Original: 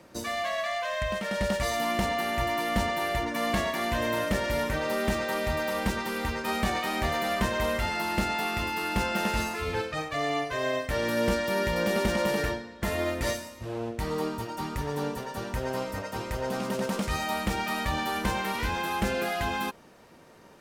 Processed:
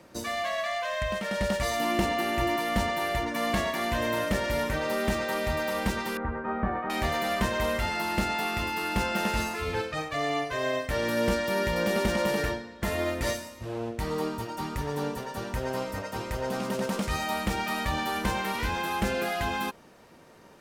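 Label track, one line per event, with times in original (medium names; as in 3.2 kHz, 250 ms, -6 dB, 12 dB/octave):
1.800000	2.560000	small resonant body resonances 330/2700 Hz, height 10 dB
6.170000	6.900000	Chebyshev low-pass 1.5 kHz, order 3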